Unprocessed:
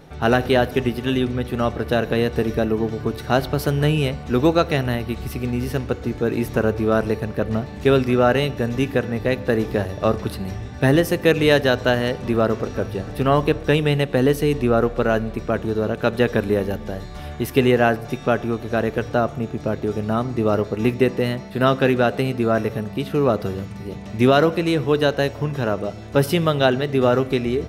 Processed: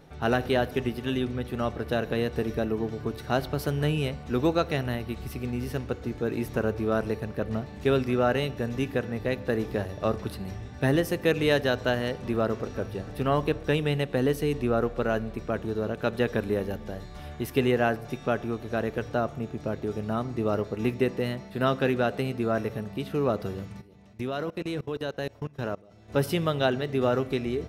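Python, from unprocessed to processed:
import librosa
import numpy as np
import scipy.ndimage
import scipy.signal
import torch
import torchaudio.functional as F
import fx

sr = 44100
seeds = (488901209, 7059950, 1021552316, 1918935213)

y = fx.level_steps(x, sr, step_db=23, at=(23.8, 26.08), fade=0.02)
y = F.gain(torch.from_numpy(y), -7.5).numpy()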